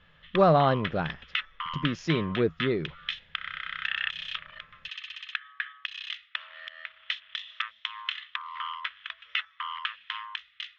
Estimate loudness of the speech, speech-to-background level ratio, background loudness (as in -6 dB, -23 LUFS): -26.5 LUFS, 8.5 dB, -35.0 LUFS